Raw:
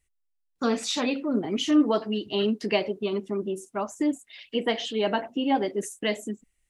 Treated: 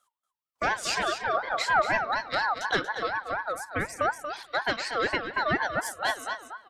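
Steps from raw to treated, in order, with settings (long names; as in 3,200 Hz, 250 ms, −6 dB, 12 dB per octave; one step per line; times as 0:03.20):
reverb reduction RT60 1.4 s
in parallel at +1 dB: downward compressor, threshold −32 dBFS, peak gain reduction 15 dB
on the sum: spring reverb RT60 1.7 s, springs 38/46 ms, chirp 20 ms, DRR 15.5 dB
tube saturation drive 13 dB, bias 0.3
single-tap delay 234 ms −9.5 dB
ring modulator whose carrier an LFO sweeps 1,100 Hz, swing 20%, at 4.1 Hz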